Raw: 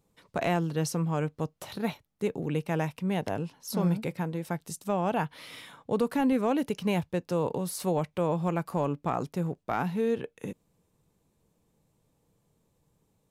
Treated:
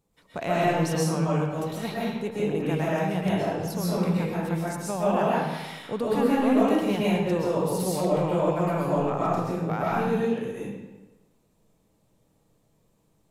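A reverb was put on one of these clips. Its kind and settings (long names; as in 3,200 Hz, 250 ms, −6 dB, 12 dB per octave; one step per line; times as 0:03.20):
comb and all-pass reverb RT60 1.1 s, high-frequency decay 0.8×, pre-delay 90 ms, DRR −7.5 dB
level −3 dB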